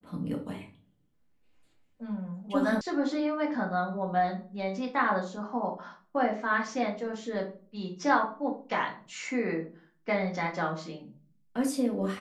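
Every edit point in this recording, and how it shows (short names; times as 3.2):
2.81 sound cut off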